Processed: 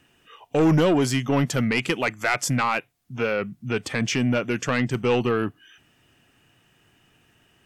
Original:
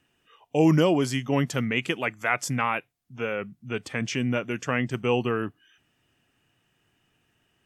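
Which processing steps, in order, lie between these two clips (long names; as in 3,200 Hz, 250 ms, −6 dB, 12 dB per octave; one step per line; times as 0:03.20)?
in parallel at −2.5 dB: downward compressor, threshold −34 dBFS, peak gain reduction 17.5 dB
on the sum: soft clipping −17.5 dBFS, distortion −12 dB
level +4 dB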